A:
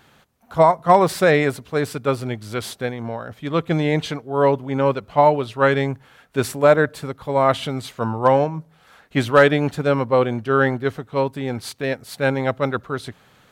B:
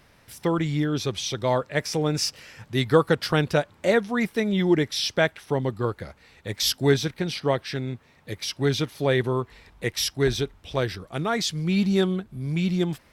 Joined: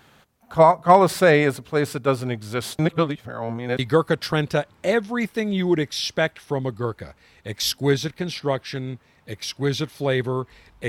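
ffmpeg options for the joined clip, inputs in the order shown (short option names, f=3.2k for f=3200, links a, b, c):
-filter_complex "[0:a]apad=whole_dur=10.88,atrim=end=10.88,asplit=2[a][b];[a]atrim=end=2.792[c];[b]atrim=start=2.788:end=3.792,asetpts=PTS-STARTPTS,areverse[d];[1:a]atrim=start=2.788:end=9.88[e];[c][d]acrossfade=d=0.004:c1=hsin:c2=hsin[f];[f][e]acrossfade=d=0.004:c1=hsin:c2=hsin"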